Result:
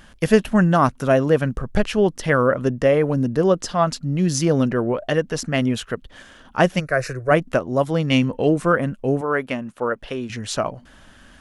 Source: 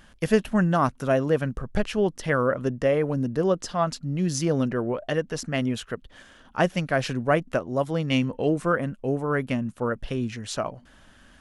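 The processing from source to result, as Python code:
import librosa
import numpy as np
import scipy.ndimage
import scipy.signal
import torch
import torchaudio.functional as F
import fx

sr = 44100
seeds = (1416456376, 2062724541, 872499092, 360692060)

y = fx.fixed_phaser(x, sr, hz=870.0, stages=6, at=(6.79, 7.3), fade=0.02)
y = fx.bass_treble(y, sr, bass_db=-13, treble_db=-5, at=(9.21, 10.3))
y = y * librosa.db_to_amplitude(5.5)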